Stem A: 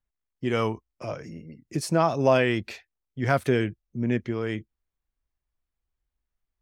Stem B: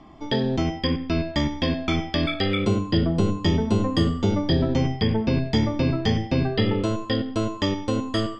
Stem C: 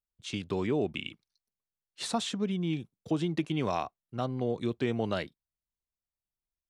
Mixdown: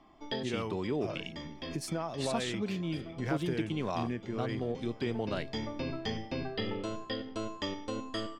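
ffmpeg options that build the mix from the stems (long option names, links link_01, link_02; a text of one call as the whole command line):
ffmpeg -i stem1.wav -i stem2.wav -i stem3.wav -filter_complex "[0:a]acompressor=threshold=-24dB:ratio=6,volume=-7dB,asplit=3[link_01][link_02][link_03];[link_02]volume=-20dB[link_04];[1:a]equalizer=frequency=100:width_type=o:width=2.7:gain=-9.5,volume=-9.5dB,asplit=2[link_05][link_06];[link_06]volume=-21dB[link_07];[2:a]adelay=200,volume=-4dB[link_08];[link_03]apad=whole_len=370407[link_09];[link_05][link_09]sidechaincompress=threshold=-44dB:ratio=8:attack=5.7:release=1190[link_10];[link_04][link_07]amix=inputs=2:normalize=0,aecho=0:1:558|1116|1674|2232|2790|3348|3906|4464:1|0.55|0.303|0.166|0.0915|0.0503|0.0277|0.0152[link_11];[link_01][link_10][link_08][link_11]amix=inputs=4:normalize=0" out.wav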